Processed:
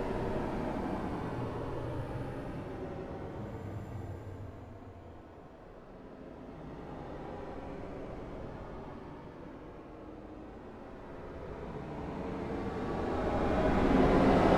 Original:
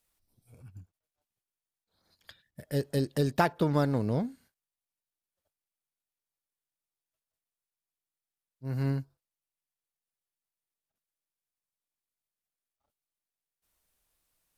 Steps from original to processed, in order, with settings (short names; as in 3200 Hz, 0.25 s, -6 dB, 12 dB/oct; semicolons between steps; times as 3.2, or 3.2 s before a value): wind noise 540 Hz -32 dBFS; Paulstretch 16×, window 0.10 s, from 0.53